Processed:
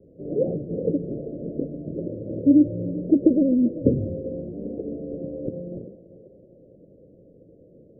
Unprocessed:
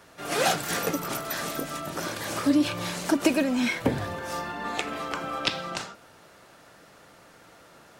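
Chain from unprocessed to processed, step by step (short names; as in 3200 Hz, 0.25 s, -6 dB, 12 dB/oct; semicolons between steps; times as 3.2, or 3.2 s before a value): steep low-pass 550 Hz 72 dB/oct; thinning echo 0.392 s, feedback 70%, high-pass 430 Hz, level -12 dB; gain +6.5 dB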